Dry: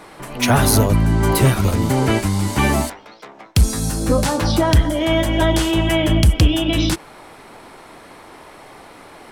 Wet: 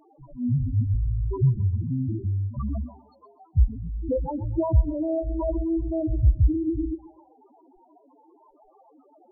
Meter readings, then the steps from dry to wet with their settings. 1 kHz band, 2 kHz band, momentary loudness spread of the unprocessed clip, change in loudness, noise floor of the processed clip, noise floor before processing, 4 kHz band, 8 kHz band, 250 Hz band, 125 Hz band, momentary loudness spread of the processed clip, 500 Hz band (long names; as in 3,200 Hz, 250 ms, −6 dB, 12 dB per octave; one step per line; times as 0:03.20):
−17.5 dB, below −40 dB, 7 LU, −8.5 dB, −59 dBFS, −42 dBFS, below −40 dB, below −40 dB, −9.5 dB, −6.5 dB, 9 LU, −10.5 dB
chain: spectral peaks only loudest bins 2
tape delay 129 ms, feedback 42%, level −16 dB, low-pass 4,500 Hz
level −3.5 dB